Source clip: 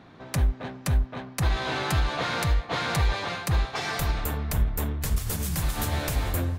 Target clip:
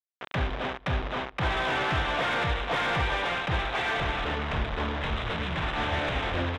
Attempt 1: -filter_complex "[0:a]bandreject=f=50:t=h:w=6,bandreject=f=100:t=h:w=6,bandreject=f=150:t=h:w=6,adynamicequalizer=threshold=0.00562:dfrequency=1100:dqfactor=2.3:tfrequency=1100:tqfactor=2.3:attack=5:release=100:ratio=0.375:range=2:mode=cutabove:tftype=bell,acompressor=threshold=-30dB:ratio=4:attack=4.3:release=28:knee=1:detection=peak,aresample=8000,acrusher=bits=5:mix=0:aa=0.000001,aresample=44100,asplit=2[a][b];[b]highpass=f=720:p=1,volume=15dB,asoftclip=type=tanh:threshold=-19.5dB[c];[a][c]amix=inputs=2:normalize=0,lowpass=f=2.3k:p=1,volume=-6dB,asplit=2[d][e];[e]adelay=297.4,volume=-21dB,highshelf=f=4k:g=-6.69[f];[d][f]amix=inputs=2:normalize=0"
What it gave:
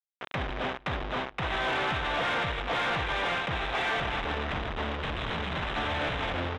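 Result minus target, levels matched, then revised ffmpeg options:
compressor: peak gain reduction +9.5 dB
-filter_complex "[0:a]bandreject=f=50:t=h:w=6,bandreject=f=100:t=h:w=6,bandreject=f=150:t=h:w=6,adynamicequalizer=threshold=0.00562:dfrequency=1100:dqfactor=2.3:tfrequency=1100:tqfactor=2.3:attack=5:release=100:ratio=0.375:range=2:mode=cutabove:tftype=bell,aresample=8000,acrusher=bits=5:mix=0:aa=0.000001,aresample=44100,asplit=2[a][b];[b]highpass=f=720:p=1,volume=15dB,asoftclip=type=tanh:threshold=-19.5dB[c];[a][c]amix=inputs=2:normalize=0,lowpass=f=2.3k:p=1,volume=-6dB,asplit=2[d][e];[e]adelay=297.4,volume=-21dB,highshelf=f=4k:g=-6.69[f];[d][f]amix=inputs=2:normalize=0"

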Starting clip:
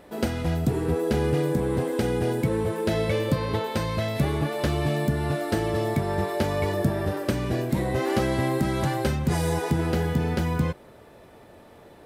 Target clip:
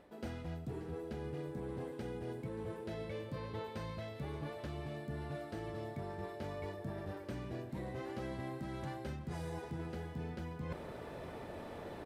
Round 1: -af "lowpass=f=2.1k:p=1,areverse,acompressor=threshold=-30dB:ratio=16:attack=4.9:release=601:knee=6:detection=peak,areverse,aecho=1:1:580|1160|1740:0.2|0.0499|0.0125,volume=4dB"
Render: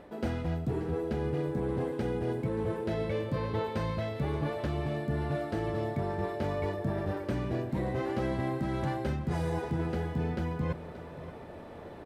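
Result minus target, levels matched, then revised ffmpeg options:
compressor: peak gain reduction -11 dB; 4000 Hz band -4.0 dB
-af "lowpass=f=4.5k:p=1,areverse,acompressor=threshold=-41.5dB:ratio=16:attack=4.9:release=601:knee=6:detection=peak,areverse,aecho=1:1:580|1160|1740:0.2|0.0499|0.0125,volume=4dB"

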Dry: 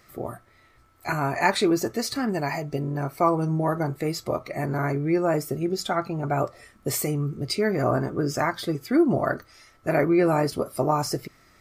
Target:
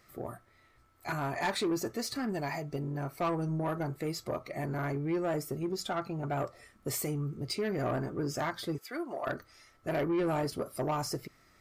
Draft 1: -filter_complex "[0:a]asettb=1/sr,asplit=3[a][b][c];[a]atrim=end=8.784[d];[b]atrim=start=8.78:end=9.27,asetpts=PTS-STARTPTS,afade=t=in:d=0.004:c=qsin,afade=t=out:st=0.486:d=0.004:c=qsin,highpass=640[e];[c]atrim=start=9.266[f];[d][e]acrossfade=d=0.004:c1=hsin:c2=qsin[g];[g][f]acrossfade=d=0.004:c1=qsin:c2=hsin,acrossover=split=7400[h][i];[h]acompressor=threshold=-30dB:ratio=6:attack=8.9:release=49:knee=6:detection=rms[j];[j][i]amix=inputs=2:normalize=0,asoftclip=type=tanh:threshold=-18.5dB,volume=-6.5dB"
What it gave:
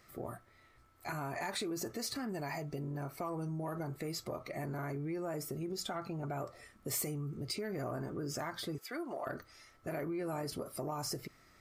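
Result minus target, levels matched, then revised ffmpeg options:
compressor: peak gain reduction +14 dB
-filter_complex "[0:a]asettb=1/sr,asplit=3[a][b][c];[a]atrim=end=8.784[d];[b]atrim=start=8.78:end=9.27,asetpts=PTS-STARTPTS,afade=t=in:d=0.004:c=qsin,afade=t=out:st=0.486:d=0.004:c=qsin,highpass=640[e];[c]atrim=start=9.266[f];[d][e]acrossfade=d=0.004:c1=hsin:c2=qsin[g];[g][f]acrossfade=d=0.004:c1=qsin:c2=hsin,asoftclip=type=tanh:threshold=-18.5dB,volume=-6.5dB"

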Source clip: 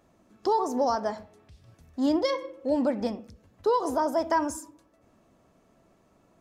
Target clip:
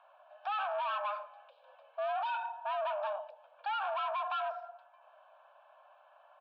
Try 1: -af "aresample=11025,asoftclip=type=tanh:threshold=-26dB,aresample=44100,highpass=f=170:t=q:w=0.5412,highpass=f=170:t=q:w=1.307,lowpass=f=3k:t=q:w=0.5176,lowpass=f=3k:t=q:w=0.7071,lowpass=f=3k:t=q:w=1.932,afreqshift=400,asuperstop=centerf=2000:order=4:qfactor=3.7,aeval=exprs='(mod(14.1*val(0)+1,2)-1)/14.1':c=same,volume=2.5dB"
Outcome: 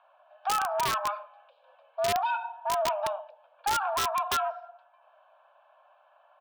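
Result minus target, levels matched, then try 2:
soft clip: distortion -5 dB
-af "aresample=11025,asoftclip=type=tanh:threshold=-35dB,aresample=44100,highpass=f=170:t=q:w=0.5412,highpass=f=170:t=q:w=1.307,lowpass=f=3k:t=q:w=0.5176,lowpass=f=3k:t=q:w=0.7071,lowpass=f=3k:t=q:w=1.932,afreqshift=400,asuperstop=centerf=2000:order=4:qfactor=3.7,aeval=exprs='(mod(14.1*val(0)+1,2)-1)/14.1':c=same,volume=2.5dB"

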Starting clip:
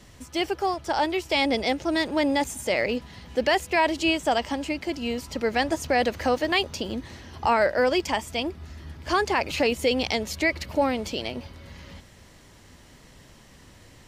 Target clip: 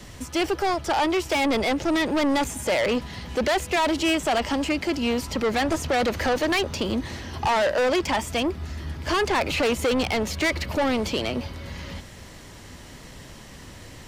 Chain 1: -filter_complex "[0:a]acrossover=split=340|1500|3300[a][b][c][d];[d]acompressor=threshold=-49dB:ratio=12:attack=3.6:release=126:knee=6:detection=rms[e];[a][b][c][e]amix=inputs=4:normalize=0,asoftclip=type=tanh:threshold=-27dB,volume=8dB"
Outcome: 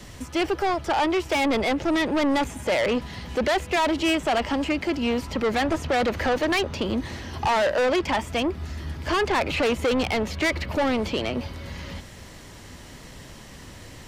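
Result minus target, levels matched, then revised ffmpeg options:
compressor: peak gain reduction +10 dB
-filter_complex "[0:a]acrossover=split=340|1500|3300[a][b][c][d];[d]acompressor=threshold=-38dB:ratio=12:attack=3.6:release=126:knee=6:detection=rms[e];[a][b][c][e]amix=inputs=4:normalize=0,asoftclip=type=tanh:threshold=-27dB,volume=8dB"

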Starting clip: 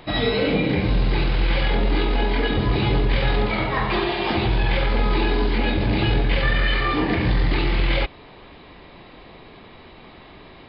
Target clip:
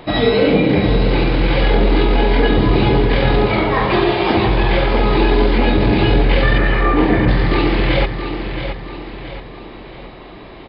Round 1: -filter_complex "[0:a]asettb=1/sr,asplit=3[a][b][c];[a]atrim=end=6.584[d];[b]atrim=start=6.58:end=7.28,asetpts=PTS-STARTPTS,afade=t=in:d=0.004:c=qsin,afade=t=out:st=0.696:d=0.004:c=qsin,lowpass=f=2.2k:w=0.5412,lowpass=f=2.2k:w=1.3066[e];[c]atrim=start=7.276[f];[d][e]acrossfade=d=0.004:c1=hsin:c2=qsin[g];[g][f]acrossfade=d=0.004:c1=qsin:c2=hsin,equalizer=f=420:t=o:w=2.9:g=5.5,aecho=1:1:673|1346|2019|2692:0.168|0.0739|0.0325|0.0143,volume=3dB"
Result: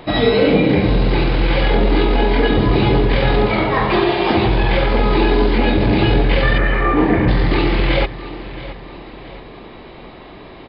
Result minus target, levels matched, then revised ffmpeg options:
echo-to-direct -7 dB
-filter_complex "[0:a]asettb=1/sr,asplit=3[a][b][c];[a]atrim=end=6.584[d];[b]atrim=start=6.58:end=7.28,asetpts=PTS-STARTPTS,afade=t=in:d=0.004:c=qsin,afade=t=out:st=0.696:d=0.004:c=qsin,lowpass=f=2.2k:w=0.5412,lowpass=f=2.2k:w=1.3066[e];[c]atrim=start=7.276[f];[d][e]acrossfade=d=0.004:c1=hsin:c2=qsin[g];[g][f]acrossfade=d=0.004:c1=qsin:c2=hsin,equalizer=f=420:t=o:w=2.9:g=5.5,aecho=1:1:673|1346|2019|2692|3365:0.376|0.165|0.0728|0.032|0.0141,volume=3dB"

